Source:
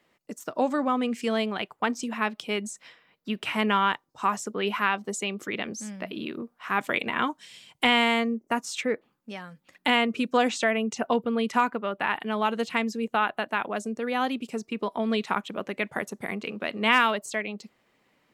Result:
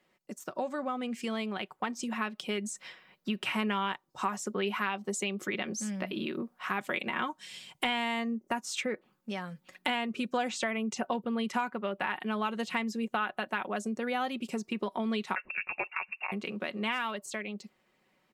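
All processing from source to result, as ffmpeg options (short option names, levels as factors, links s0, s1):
-filter_complex "[0:a]asettb=1/sr,asplit=3[s0][s1][s2];[s0]atrim=end=15.354[s3];[s1]atrim=start=15.35:end=16.32,asetpts=PTS-STARTPTS,afade=t=in:d=0.004:c=qsin,afade=t=out:st=0.966:d=0.004:c=qsin,lowshelf=f=170:g=6.5,lowpass=f=2500:t=q:w=0.5098,lowpass=f=2500:t=q:w=0.6013,lowpass=f=2500:t=q:w=0.9,lowpass=f=2500:t=q:w=2.563,afreqshift=-2900[s4];[s2]atrim=start=16.316[s5];[s3][s4]acrossfade=d=0.004:c1=hsin:c2=qsin[s6];[s6][s5]acrossfade=d=0.004:c1=qsin:c2=hsin,dynaudnorm=f=270:g=17:m=3.76,aecho=1:1:5.4:0.41,acompressor=threshold=0.0398:ratio=2.5,volume=0.596"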